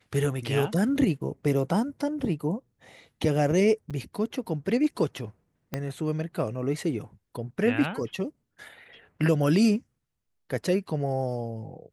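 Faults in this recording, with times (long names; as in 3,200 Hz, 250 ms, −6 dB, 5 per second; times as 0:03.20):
0:03.90–0:03.91: drop-out 6.4 ms
0:05.74: click −15 dBFS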